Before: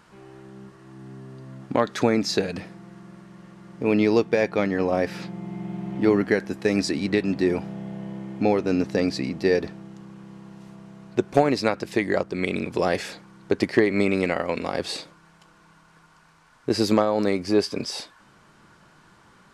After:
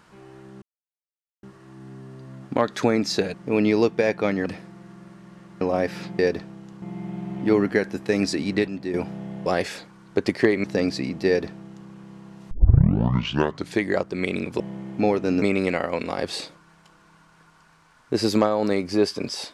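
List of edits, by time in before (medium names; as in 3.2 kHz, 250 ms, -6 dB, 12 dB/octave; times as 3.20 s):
0.62 s: insert silence 0.81 s
3.68–4.80 s: move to 2.53 s
7.24–7.50 s: gain -7.5 dB
8.02–8.84 s: swap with 12.80–13.98 s
9.47–10.10 s: copy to 5.38 s
10.71 s: tape start 1.31 s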